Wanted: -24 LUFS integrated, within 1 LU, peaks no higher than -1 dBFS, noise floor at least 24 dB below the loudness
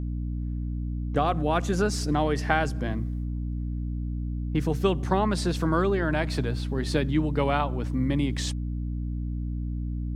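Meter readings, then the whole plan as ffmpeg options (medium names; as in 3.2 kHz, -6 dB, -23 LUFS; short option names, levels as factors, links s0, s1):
hum 60 Hz; highest harmonic 300 Hz; hum level -28 dBFS; loudness -27.5 LUFS; peak level -7.0 dBFS; loudness target -24.0 LUFS
-> -af "bandreject=f=60:t=h:w=6,bandreject=f=120:t=h:w=6,bandreject=f=180:t=h:w=6,bandreject=f=240:t=h:w=6,bandreject=f=300:t=h:w=6"
-af "volume=1.5"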